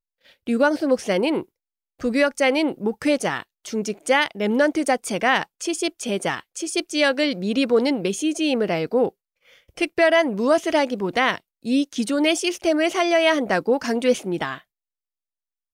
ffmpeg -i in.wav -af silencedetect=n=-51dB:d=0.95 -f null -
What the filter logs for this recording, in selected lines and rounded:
silence_start: 14.62
silence_end: 15.73 | silence_duration: 1.11